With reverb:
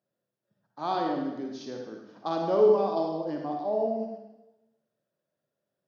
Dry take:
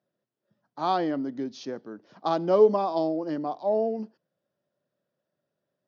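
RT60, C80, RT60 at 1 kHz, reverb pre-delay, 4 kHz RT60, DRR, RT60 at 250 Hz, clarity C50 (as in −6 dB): 0.95 s, 4.5 dB, 1.0 s, 33 ms, 0.95 s, 1.0 dB, 1.0 s, 1.5 dB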